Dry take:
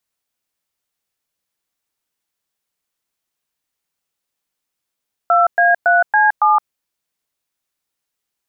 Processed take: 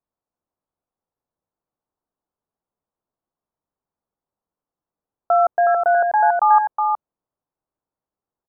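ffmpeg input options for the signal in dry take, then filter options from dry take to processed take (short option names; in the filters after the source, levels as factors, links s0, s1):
-f lavfi -i "aevalsrc='0.251*clip(min(mod(t,0.279),0.168-mod(t,0.279))/0.002,0,1)*(eq(floor(t/0.279),0)*(sin(2*PI*697*mod(t,0.279))+sin(2*PI*1336*mod(t,0.279)))+eq(floor(t/0.279),1)*(sin(2*PI*697*mod(t,0.279))+sin(2*PI*1633*mod(t,0.279)))+eq(floor(t/0.279),2)*(sin(2*PI*697*mod(t,0.279))+sin(2*PI*1477*mod(t,0.279)))+eq(floor(t/0.279),3)*(sin(2*PI*852*mod(t,0.279))+sin(2*PI*1633*mod(t,0.279)))+eq(floor(t/0.279),4)*(sin(2*PI*852*mod(t,0.279))+sin(2*PI*1209*mod(t,0.279))))':d=1.395:s=44100"
-filter_complex "[0:a]lowpass=f=1100:w=0.5412,lowpass=f=1100:w=1.3066,asplit=2[s0][s1];[s1]aecho=0:1:367:0.596[s2];[s0][s2]amix=inputs=2:normalize=0"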